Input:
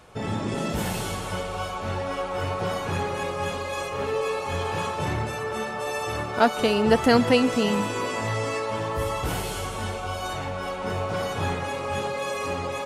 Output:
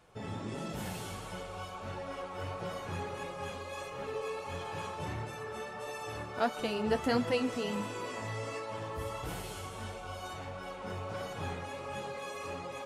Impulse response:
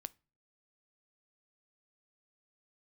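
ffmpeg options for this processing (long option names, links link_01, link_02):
-af "flanger=delay=5.8:depth=6:regen=-45:speed=1.5:shape=sinusoidal,volume=-7.5dB"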